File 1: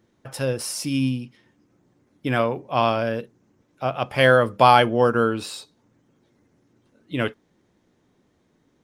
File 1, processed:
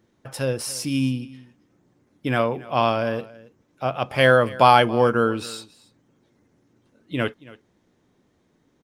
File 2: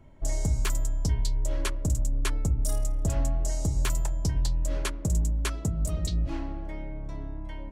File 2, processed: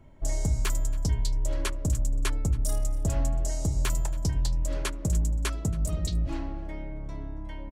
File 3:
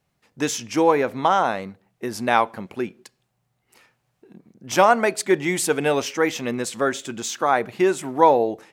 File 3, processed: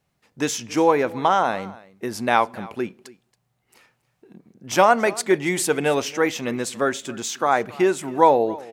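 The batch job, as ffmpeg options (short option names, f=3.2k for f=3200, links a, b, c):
-af "aecho=1:1:277:0.0944"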